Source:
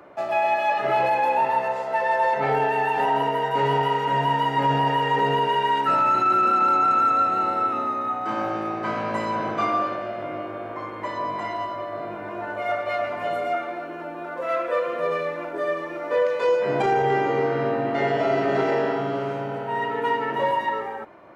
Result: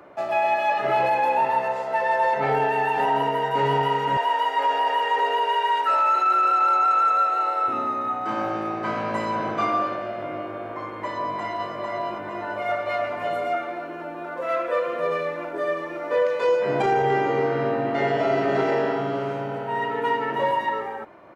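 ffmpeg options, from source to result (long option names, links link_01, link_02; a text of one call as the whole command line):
ffmpeg -i in.wav -filter_complex "[0:a]asettb=1/sr,asplit=3[link_01][link_02][link_03];[link_01]atrim=end=4.174[link_04];[link_02]atrim=start=4.17:end=7.68,asetpts=PTS-STARTPTS,afade=type=in:duration=0.004:curve=qsin,afade=type=out:start_time=3.506:duration=0.004:curve=qsin,highpass=frequency=450:width=0.5412,highpass=frequency=450:width=1.3066[link_05];[link_03]atrim=start=7.676[link_06];[link_04][link_05]acrossfade=duration=0.004:curve1=hsin:curve2=qsin[link_07];[link_07][link_06]acrossfade=duration=0.004:curve1=qsin:curve2=hsin,asplit=2[link_08][link_09];[link_09]afade=type=in:start_time=11.14:duration=0.01,afade=type=out:start_time=11.73:duration=0.01,aecho=0:1:450|900|1350|1800|2250|2700|3150:0.668344|0.334172|0.167086|0.083543|0.0417715|0.0208857|0.0104429[link_10];[link_08][link_10]amix=inputs=2:normalize=0" out.wav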